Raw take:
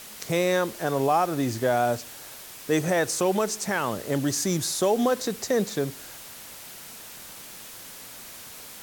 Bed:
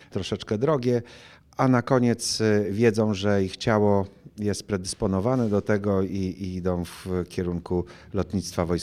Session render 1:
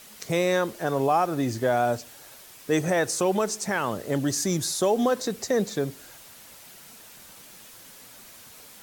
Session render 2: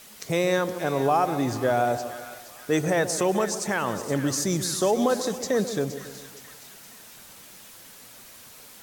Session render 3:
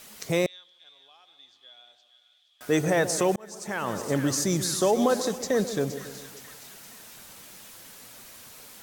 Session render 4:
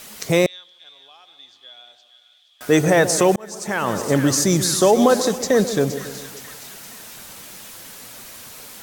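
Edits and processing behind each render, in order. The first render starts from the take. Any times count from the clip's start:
noise reduction 6 dB, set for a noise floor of -43 dBFS
on a send: two-band feedback delay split 1.2 kHz, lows 138 ms, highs 469 ms, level -11.5 dB; on the sum: modulated delay 189 ms, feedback 51%, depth 162 cents, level -20 dB
0.46–2.61 s: band-pass filter 3.4 kHz, Q 19; 3.36–4.05 s: fade in linear; 5.31–5.81 s: companding laws mixed up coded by A
trim +8 dB

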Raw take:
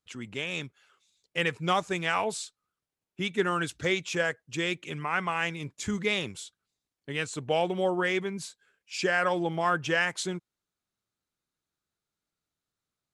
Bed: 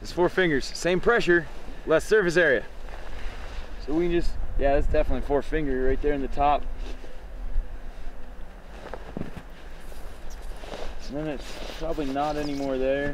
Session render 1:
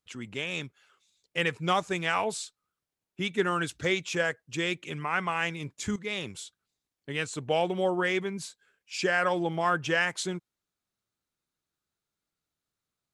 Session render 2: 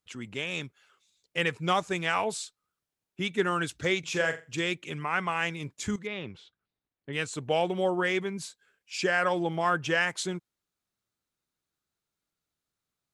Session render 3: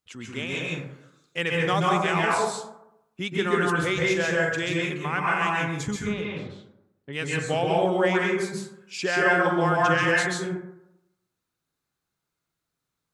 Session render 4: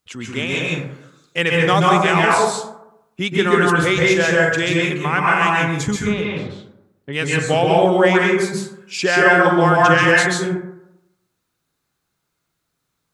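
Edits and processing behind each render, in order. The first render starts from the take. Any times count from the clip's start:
5.96–6.37 s: fade in, from -12.5 dB
3.99–4.61 s: flutter echo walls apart 7.4 m, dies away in 0.28 s; 6.07–7.13 s: distance through air 300 m
plate-style reverb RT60 0.84 s, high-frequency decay 0.35×, pre-delay 120 ms, DRR -3.5 dB
trim +8.5 dB; peak limiter -1 dBFS, peak gain reduction 1 dB

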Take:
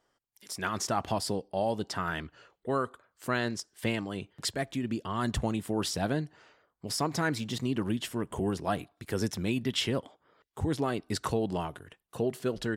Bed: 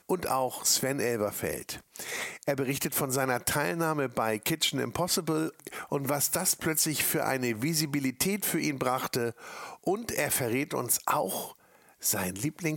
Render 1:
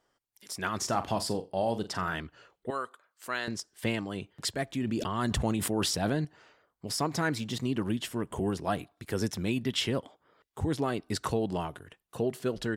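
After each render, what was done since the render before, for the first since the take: 0.77–2.16 s: flutter echo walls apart 7.4 m, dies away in 0.22 s; 2.70–3.48 s: high-pass 1 kHz 6 dB/octave; 4.69–6.25 s: decay stretcher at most 26 dB/s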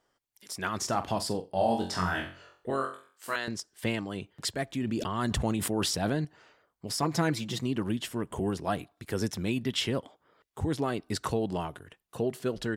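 1.51–3.36 s: flutter echo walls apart 3.8 m, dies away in 0.42 s; 7.02–7.60 s: comb 5.9 ms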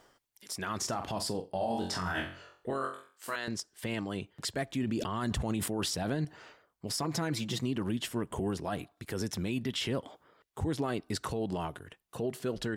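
peak limiter -23.5 dBFS, peak gain reduction 8.5 dB; reverse; upward compressor, threshold -44 dBFS; reverse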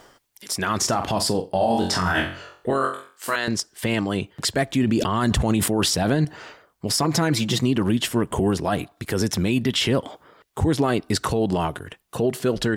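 trim +12 dB

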